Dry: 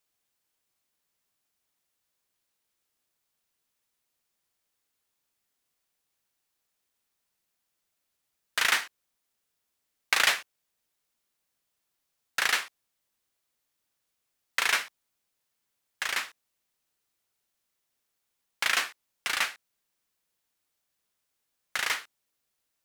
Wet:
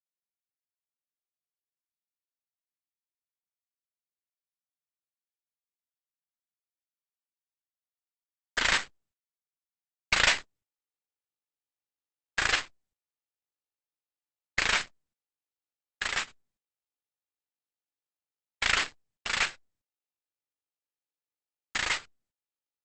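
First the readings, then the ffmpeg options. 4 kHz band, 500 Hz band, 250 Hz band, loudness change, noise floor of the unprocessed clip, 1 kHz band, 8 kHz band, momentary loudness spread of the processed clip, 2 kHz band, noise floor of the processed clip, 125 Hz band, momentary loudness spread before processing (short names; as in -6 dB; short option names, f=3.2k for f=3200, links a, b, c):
0.0 dB, +2.0 dB, +6.5 dB, -0.5 dB, -81 dBFS, -0.5 dB, -1.5 dB, 11 LU, -0.5 dB, under -85 dBFS, n/a, 12 LU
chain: -af "bandreject=f=60:t=h:w=6,bandreject=f=120:t=h:w=6,bandreject=f=180:t=h:w=6,bandreject=f=240:t=h:w=6,bandreject=f=300:t=h:w=6,bandreject=f=360:t=h:w=6,aeval=exprs='0.473*(cos(1*acos(clip(val(0)/0.473,-1,1)))-cos(1*PI/2))+0.0531*(cos(2*acos(clip(val(0)/0.473,-1,1)))-cos(2*PI/2))+0.0075*(cos(3*acos(clip(val(0)/0.473,-1,1)))-cos(3*PI/2))+0.0841*(cos(4*acos(clip(val(0)/0.473,-1,1)))-cos(4*PI/2))+0.0168*(cos(5*acos(clip(val(0)/0.473,-1,1)))-cos(5*PI/2))':c=same,acrusher=bits=6:dc=4:mix=0:aa=0.000001,equalizer=f=5.9k:w=7.8:g=-6" -ar 48000 -c:a libopus -b:a 10k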